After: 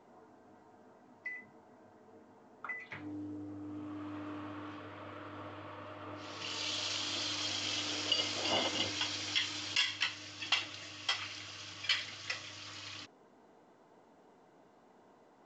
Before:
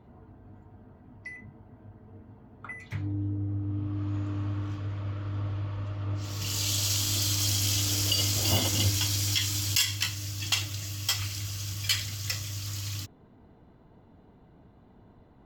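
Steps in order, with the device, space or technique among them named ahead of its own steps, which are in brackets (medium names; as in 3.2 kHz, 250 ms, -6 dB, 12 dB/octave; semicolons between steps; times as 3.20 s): telephone (band-pass 400–3100 Hz; µ-law 128 kbps 16 kHz)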